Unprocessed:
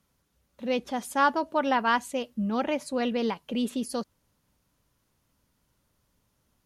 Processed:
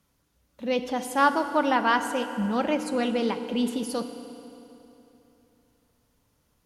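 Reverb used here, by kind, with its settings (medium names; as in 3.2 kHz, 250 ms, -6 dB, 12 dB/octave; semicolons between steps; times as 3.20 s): FDN reverb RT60 3.2 s, high-frequency decay 0.8×, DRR 8 dB; trim +1.5 dB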